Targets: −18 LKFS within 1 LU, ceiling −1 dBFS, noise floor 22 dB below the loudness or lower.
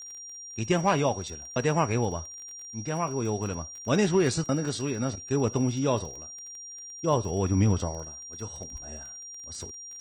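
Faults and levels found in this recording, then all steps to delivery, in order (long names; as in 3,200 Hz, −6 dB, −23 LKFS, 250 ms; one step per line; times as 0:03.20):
crackle rate 27 per second; interfering tone 5,700 Hz; level of the tone −40 dBFS; integrated loudness −28.5 LKFS; sample peak −12.0 dBFS; target loudness −18.0 LKFS
→ click removal
notch filter 5,700 Hz, Q 30
level +10.5 dB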